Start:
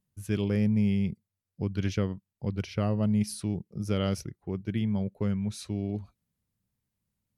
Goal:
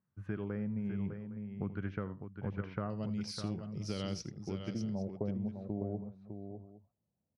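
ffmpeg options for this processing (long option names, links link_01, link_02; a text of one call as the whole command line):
ffmpeg -i in.wav -af "highpass=86,acompressor=threshold=-33dB:ratio=4,asetnsamples=nb_out_samples=441:pad=0,asendcmd='2.9 lowpass f 5200;4.73 lowpass f 660',lowpass=frequency=1400:width_type=q:width=2.5,aecho=1:1:82|604|811:0.15|0.422|0.126,volume=-2.5dB" out.wav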